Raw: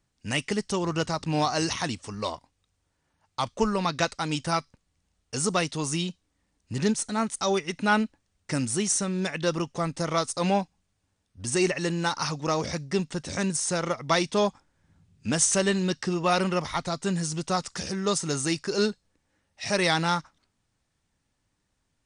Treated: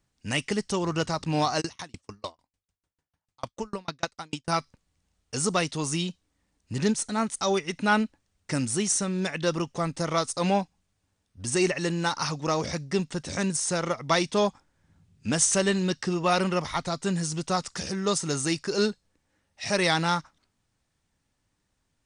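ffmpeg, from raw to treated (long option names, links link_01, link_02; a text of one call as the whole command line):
ffmpeg -i in.wav -filter_complex "[0:a]asplit=3[link_01][link_02][link_03];[link_01]afade=type=out:start_time=1.6:duration=0.02[link_04];[link_02]aeval=exprs='val(0)*pow(10,-39*if(lt(mod(6.7*n/s,1),2*abs(6.7)/1000),1-mod(6.7*n/s,1)/(2*abs(6.7)/1000),(mod(6.7*n/s,1)-2*abs(6.7)/1000)/(1-2*abs(6.7)/1000))/20)':channel_layout=same,afade=type=in:start_time=1.6:duration=0.02,afade=type=out:start_time=4.48:duration=0.02[link_05];[link_03]afade=type=in:start_time=4.48:duration=0.02[link_06];[link_04][link_05][link_06]amix=inputs=3:normalize=0" out.wav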